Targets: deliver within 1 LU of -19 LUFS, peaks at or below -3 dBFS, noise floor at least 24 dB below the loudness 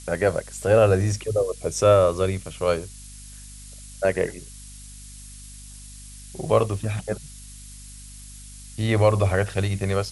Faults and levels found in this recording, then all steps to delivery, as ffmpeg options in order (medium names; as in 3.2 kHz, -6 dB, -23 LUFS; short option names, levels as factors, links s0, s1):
hum 50 Hz; highest harmonic 250 Hz; hum level -42 dBFS; noise floor -42 dBFS; noise floor target -47 dBFS; loudness -22.5 LUFS; peak level -5.5 dBFS; loudness target -19.0 LUFS
-> -af "bandreject=f=50:t=h:w=4,bandreject=f=100:t=h:w=4,bandreject=f=150:t=h:w=4,bandreject=f=200:t=h:w=4,bandreject=f=250:t=h:w=4"
-af "afftdn=nr=6:nf=-42"
-af "volume=1.5,alimiter=limit=0.708:level=0:latency=1"